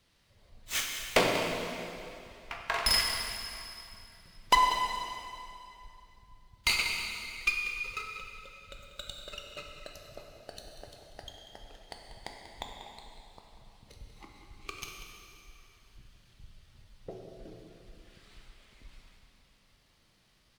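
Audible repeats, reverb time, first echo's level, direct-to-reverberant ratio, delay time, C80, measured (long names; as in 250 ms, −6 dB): 1, 2.7 s, −12.5 dB, 0.5 dB, 190 ms, 3.0 dB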